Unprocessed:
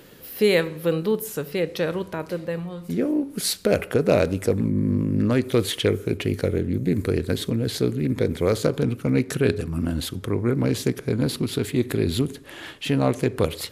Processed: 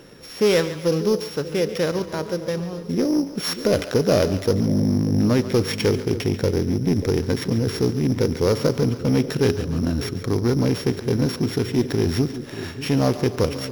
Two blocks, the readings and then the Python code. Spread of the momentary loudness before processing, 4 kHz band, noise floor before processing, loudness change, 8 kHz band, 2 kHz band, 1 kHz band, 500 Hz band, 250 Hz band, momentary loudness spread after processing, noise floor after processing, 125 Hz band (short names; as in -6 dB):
8 LU, +1.0 dB, -43 dBFS, +2.0 dB, 0.0 dB, 0.0 dB, +2.0 dB, +1.5 dB, +2.0 dB, 7 LU, -36 dBFS, +2.5 dB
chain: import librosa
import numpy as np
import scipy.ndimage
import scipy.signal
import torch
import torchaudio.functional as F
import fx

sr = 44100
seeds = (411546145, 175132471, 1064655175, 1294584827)

p1 = np.r_[np.sort(x[:len(x) // 8 * 8].reshape(-1, 8), axis=1).ravel(), x[len(x) // 8 * 8:]]
p2 = 10.0 ** (-18.0 / 20.0) * (np.abs((p1 / 10.0 ** (-18.0 / 20.0) + 3.0) % 4.0 - 2.0) - 1.0)
p3 = p1 + (p2 * 10.0 ** (-8.0 / 20.0))
p4 = fx.high_shelf(p3, sr, hz=7900.0, db=-9.5)
y = fx.echo_split(p4, sr, split_hz=530.0, low_ms=589, high_ms=140, feedback_pct=52, wet_db=-13)